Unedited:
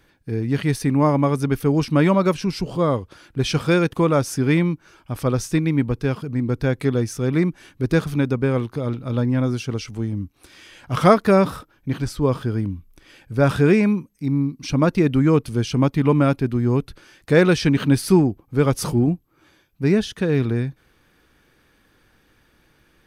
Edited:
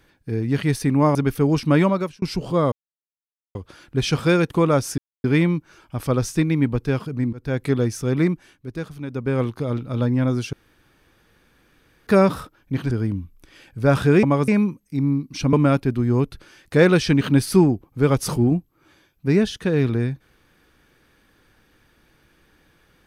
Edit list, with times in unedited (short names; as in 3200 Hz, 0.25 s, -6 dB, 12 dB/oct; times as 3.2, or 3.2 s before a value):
1.15–1.4 move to 13.77
2.06–2.47 fade out
2.97 insert silence 0.83 s
4.4 insert silence 0.26 s
6.49–6.79 fade in, from -23.5 dB
7.41–8.58 dip -11.5 dB, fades 0.35 s
9.69–11.23 room tone
12.07–12.45 cut
14.82–16.09 cut